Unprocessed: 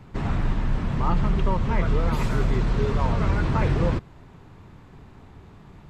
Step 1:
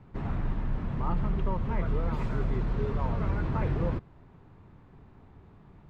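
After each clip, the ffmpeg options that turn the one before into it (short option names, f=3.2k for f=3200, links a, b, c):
-af "lowpass=f=1.7k:p=1,volume=-6.5dB"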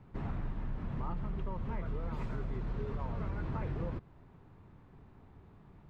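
-af "acompressor=threshold=-29dB:ratio=6,volume=-3.5dB"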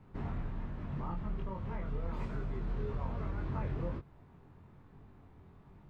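-af "flanger=delay=20:depth=3.8:speed=1.2,volume=2.5dB"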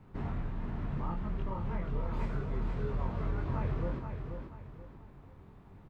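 -af "aecho=1:1:482|964|1446|1928:0.473|0.156|0.0515|0.017,volume=2dB"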